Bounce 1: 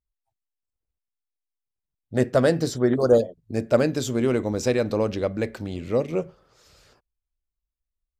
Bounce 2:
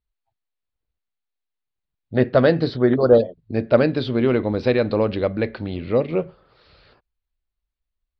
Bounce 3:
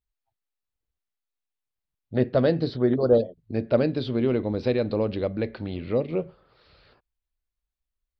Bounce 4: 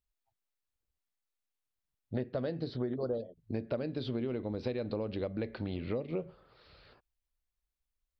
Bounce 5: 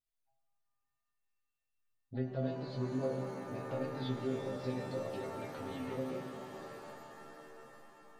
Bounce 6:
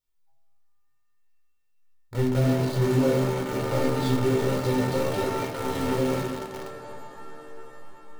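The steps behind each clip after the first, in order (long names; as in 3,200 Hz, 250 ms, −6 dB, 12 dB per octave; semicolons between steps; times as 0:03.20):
elliptic low-pass filter 4,400 Hz, stop band 40 dB; level +4.5 dB
dynamic equaliser 1,500 Hz, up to −7 dB, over −33 dBFS, Q 0.74; level −4 dB
downward compressor 12 to 1, threshold −29 dBFS, peak gain reduction 16 dB; level −2 dB
stiff-string resonator 130 Hz, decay 0.36 s, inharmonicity 0.002; reverb with rising layers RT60 4 s, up +7 semitones, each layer −2 dB, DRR 5 dB; level +6.5 dB
in parallel at −9 dB: log-companded quantiser 2 bits; on the sum: convolution reverb RT60 0.50 s, pre-delay 9 ms, DRR 3 dB; level +3 dB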